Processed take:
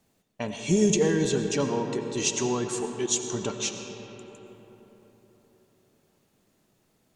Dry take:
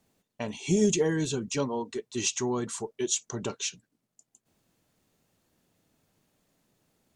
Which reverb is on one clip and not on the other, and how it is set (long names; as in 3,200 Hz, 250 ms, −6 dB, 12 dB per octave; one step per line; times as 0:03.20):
comb and all-pass reverb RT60 4.3 s, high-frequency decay 0.45×, pre-delay 50 ms, DRR 5.5 dB
level +2 dB